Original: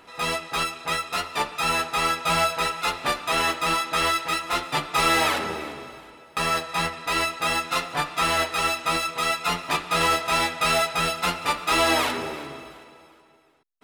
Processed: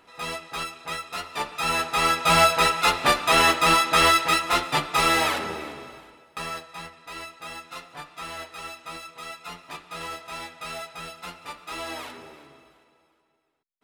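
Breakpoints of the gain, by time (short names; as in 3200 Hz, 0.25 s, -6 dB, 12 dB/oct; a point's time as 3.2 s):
1.14 s -6 dB
2.45 s +5 dB
4.23 s +5 dB
5.35 s -2 dB
5.97 s -2 dB
6.84 s -14 dB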